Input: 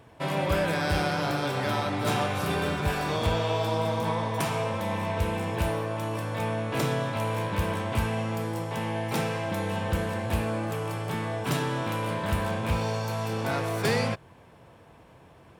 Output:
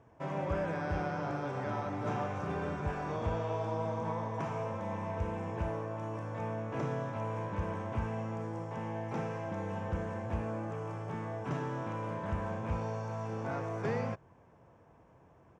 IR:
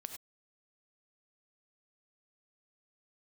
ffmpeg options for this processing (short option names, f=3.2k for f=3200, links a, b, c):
-filter_complex "[0:a]acrossover=split=4300[a][b];[b]acompressor=threshold=-47dB:ratio=4:attack=1:release=60[c];[a][c]amix=inputs=2:normalize=0,firequalizer=gain_entry='entry(1000,0);entry(4100,-17);entry(6100,-2);entry(11000,-26)':delay=0.05:min_phase=1,volume=-7.5dB"